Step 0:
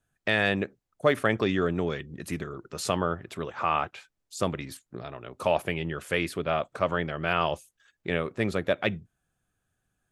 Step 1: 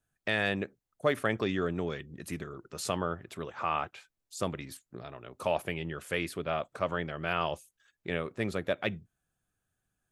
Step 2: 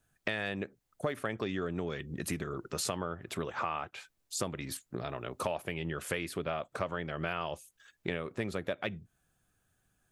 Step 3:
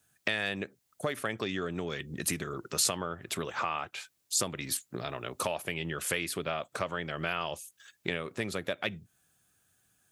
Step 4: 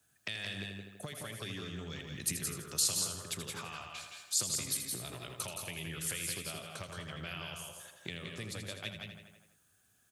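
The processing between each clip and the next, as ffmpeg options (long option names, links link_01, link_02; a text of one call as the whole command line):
ffmpeg -i in.wav -af "highshelf=frequency=8300:gain=4.5,volume=-5dB" out.wav
ffmpeg -i in.wav -af "acompressor=threshold=-39dB:ratio=6,volume=7.5dB" out.wav
ffmpeg -i in.wav -af "highpass=76,highshelf=frequency=2300:gain=9.5" out.wav
ffmpeg -i in.wav -filter_complex "[0:a]asplit=2[link_01][link_02];[link_02]aecho=0:1:81|162|243|324|405|486:0.355|0.185|0.0959|0.0499|0.0259|0.0135[link_03];[link_01][link_03]amix=inputs=2:normalize=0,acrossover=split=150|3000[link_04][link_05][link_06];[link_05]acompressor=threshold=-46dB:ratio=4[link_07];[link_04][link_07][link_06]amix=inputs=3:normalize=0,asplit=2[link_08][link_09];[link_09]aecho=0:1:172|191:0.531|0.282[link_10];[link_08][link_10]amix=inputs=2:normalize=0,volume=-2dB" out.wav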